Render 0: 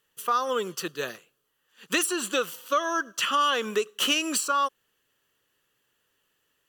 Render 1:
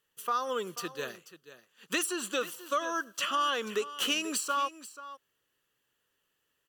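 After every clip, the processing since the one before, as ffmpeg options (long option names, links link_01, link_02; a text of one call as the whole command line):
ffmpeg -i in.wav -af "aecho=1:1:486:0.178,volume=-5.5dB" out.wav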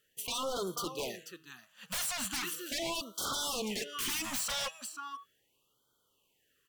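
ffmpeg -i in.wav -af "aeval=exprs='0.02*(abs(mod(val(0)/0.02+3,4)-2)-1)':channel_layout=same,bandreject=frequency=160.8:width_type=h:width=4,bandreject=frequency=321.6:width_type=h:width=4,bandreject=frequency=482.4:width_type=h:width=4,bandreject=frequency=643.2:width_type=h:width=4,bandreject=frequency=804:width_type=h:width=4,bandreject=frequency=964.8:width_type=h:width=4,bandreject=frequency=1125.6:width_type=h:width=4,bandreject=frequency=1286.4:width_type=h:width=4,bandreject=frequency=1447.2:width_type=h:width=4,bandreject=frequency=1608:width_type=h:width=4,bandreject=frequency=1768.8:width_type=h:width=4,bandreject=frequency=1929.6:width_type=h:width=4,bandreject=frequency=2090.4:width_type=h:width=4,bandreject=frequency=2251.2:width_type=h:width=4,bandreject=frequency=2412:width_type=h:width=4,bandreject=frequency=2572.8:width_type=h:width=4,bandreject=frequency=2733.6:width_type=h:width=4,bandreject=frequency=2894.4:width_type=h:width=4,bandreject=frequency=3055.2:width_type=h:width=4,bandreject=frequency=3216:width_type=h:width=4,bandreject=frequency=3376.8:width_type=h:width=4,bandreject=frequency=3537.6:width_type=h:width=4,bandreject=frequency=3698.4:width_type=h:width=4,bandreject=frequency=3859.2:width_type=h:width=4,bandreject=frequency=4020:width_type=h:width=4,bandreject=frequency=4180.8:width_type=h:width=4,bandreject=frequency=4341.6:width_type=h:width=4,afftfilt=real='re*(1-between(b*sr/1024,320*pow(2200/320,0.5+0.5*sin(2*PI*0.38*pts/sr))/1.41,320*pow(2200/320,0.5+0.5*sin(2*PI*0.38*pts/sr))*1.41))':imag='im*(1-between(b*sr/1024,320*pow(2200/320,0.5+0.5*sin(2*PI*0.38*pts/sr))/1.41,320*pow(2200/320,0.5+0.5*sin(2*PI*0.38*pts/sr))*1.41))':win_size=1024:overlap=0.75,volume=4.5dB" out.wav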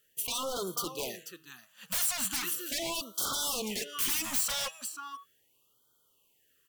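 ffmpeg -i in.wav -af "highshelf=frequency=8500:gain=10" out.wav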